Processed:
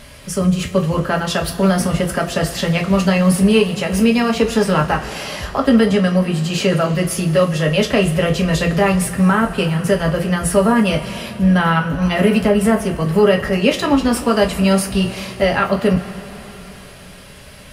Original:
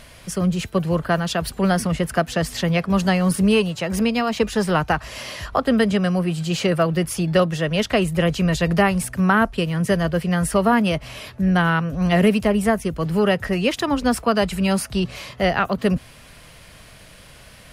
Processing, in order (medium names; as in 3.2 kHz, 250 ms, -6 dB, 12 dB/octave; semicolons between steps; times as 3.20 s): peak limiter -10 dBFS, peak gain reduction 6 dB; two-slope reverb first 0.22 s, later 4.1 s, from -21 dB, DRR 0 dB; trim +2 dB